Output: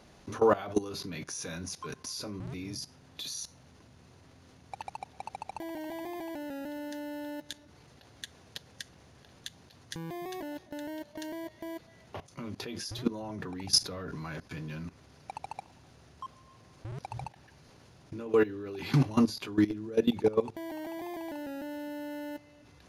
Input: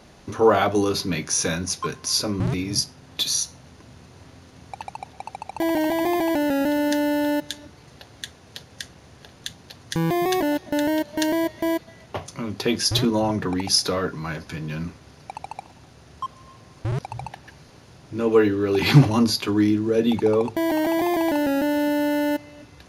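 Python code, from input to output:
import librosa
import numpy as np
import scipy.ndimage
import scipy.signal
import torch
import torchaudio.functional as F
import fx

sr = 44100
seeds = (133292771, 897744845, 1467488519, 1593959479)

y = fx.low_shelf(x, sr, hz=150.0, db=10.5, at=(13.64, 14.16))
y = fx.level_steps(y, sr, step_db=18)
y = y * librosa.db_to_amplitude(-3.0)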